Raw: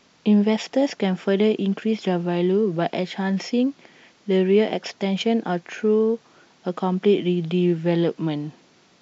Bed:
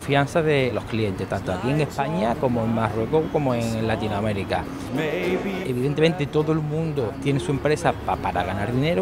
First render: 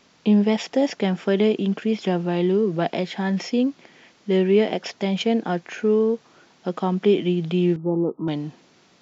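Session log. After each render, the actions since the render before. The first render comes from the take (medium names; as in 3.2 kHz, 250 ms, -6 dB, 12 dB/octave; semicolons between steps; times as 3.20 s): 7.76–8.28 s: rippled Chebyshev low-pass 1.3 kHz, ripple 6 dB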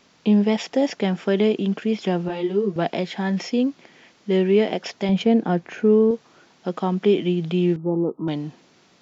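2.28–2.76 s: three-phase chorus; 5.09–6.11 s: tilt EQ -2 dB/octave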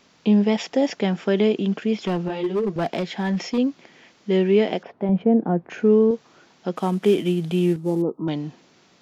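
2.01–3.58 s: hard clipper -18 dBFS; 4.83–5.70 s: low-pass 1 kHz; 6.76–8.02 s: CVSD coder 64 kbps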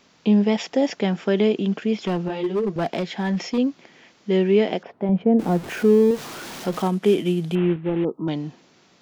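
5.39–6.88 s: jump at every zero crossing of -30.5 dBFS; 7.55–8.05 s: CVSD coder 16 kbps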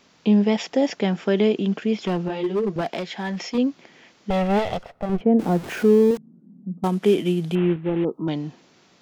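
2.81–3.55 s: bass shelf 390 Hz -7 dB; 4.30–5.21 s: comb filter that takes the minimum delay 1.5 ms; 6.17–6.84 s: Butterworth band-pass 200 Hz, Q 2.9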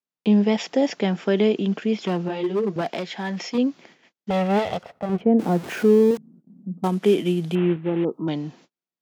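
gate -48 dBFS, range -41 dB; high-pass 110 Hz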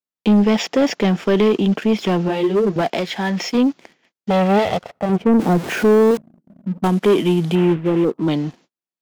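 waveshaping leveller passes 2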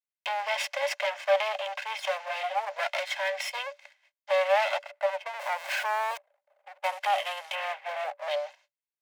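comb filter that takes the minimum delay 1.9 ms; rippled Chebyshev high-pass 560 Hz, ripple 9 dB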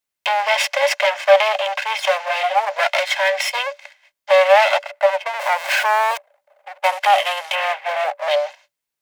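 trim +12 dB; peak limiter -1 dBFS, peak gain reduction 0.5 dB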